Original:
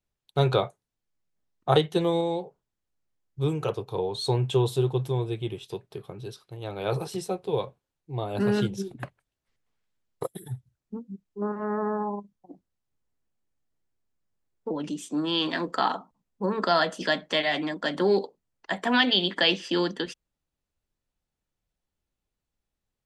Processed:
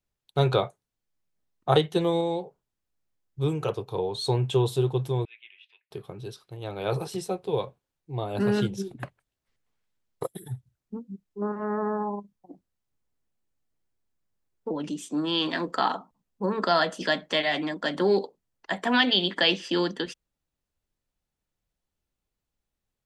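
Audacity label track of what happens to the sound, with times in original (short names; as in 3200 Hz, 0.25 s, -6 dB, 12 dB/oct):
5.250000	5.910000	Butterworth band-pass 2300 Hz, Q 2.4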